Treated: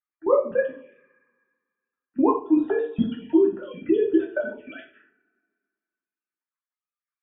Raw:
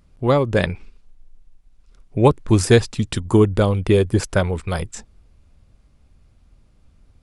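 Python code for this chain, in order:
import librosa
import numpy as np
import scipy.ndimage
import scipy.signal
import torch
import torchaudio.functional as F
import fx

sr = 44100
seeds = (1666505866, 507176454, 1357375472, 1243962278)

y = fx.sine_speech(x, sr)
y = fx.noise_reduce_blind(y, sr, reduce_db=15)
y = fx.level_steps(y, sr, step_db=20)
y = fx.rev_double_slope(y, sr, seeds[0], early_s=0.41, late_s=1.9, knee_db=-25, drr_db=-3.0)
y = fx.env_phaser(y, sr, low_hz=570.0, high_hz=2200.0, full_db=-23.0)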